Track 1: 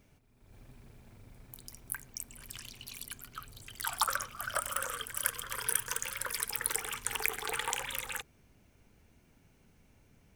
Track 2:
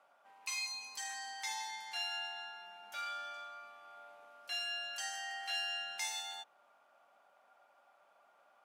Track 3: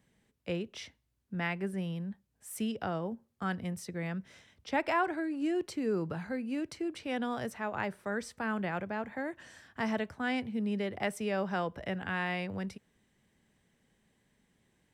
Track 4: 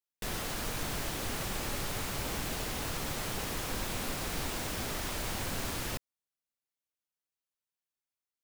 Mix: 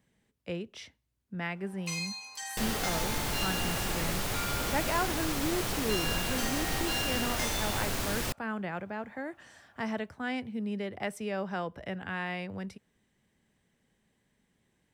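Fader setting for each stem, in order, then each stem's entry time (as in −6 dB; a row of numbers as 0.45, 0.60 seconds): muted, +2.5 dB, −1.5 dB, +3.0 dB; muted, 1.40 s, 0.00 s, 2.35 s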